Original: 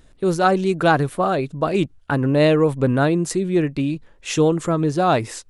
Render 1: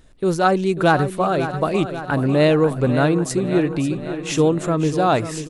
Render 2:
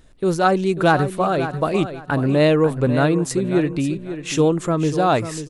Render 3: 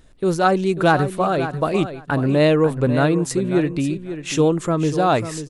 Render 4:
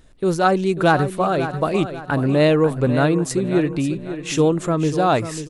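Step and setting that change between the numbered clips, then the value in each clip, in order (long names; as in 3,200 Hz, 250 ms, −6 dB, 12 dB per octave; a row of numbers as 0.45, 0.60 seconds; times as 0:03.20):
repeating echo, feedback: 60, 24, 15, 38%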